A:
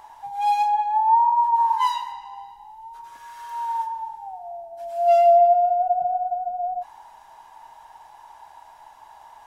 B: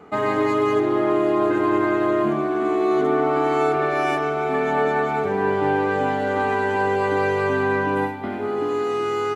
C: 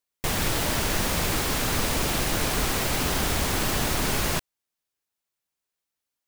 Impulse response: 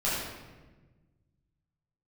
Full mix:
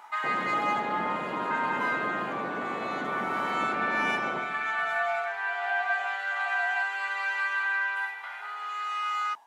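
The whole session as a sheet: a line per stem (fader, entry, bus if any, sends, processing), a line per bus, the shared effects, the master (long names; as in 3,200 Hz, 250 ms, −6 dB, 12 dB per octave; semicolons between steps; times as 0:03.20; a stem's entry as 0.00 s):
−4.5 dB, 0.00 s, no send, downward compressor 2.5 to 1, threshold −30 dBFS, peak gain reduction 12 dB; tremolo along a rectified sine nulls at 1.2 Hz
+2.0 dB, 0.00 s, send −17 dB, inverse Chebyshev high-pass filter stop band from 300 Hz, stop band 70 dB; spectral tilt −3 dB per octave
−6.0 dB, 0.00 s, send −16 dB, low-pass filter 1,100 Hz 24 dB per octave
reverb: on, RT60 1.3 s, pre-delay 9 ms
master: high-pass filter 200 Hz 24 dB per octave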